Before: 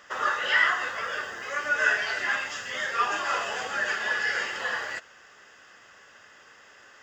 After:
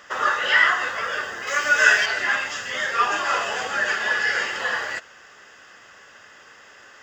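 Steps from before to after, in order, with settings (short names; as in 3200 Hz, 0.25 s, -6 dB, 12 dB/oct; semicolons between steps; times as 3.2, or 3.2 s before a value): 1.47–2.06 high shelf 2700 Hz +10 dB; gain +5 dB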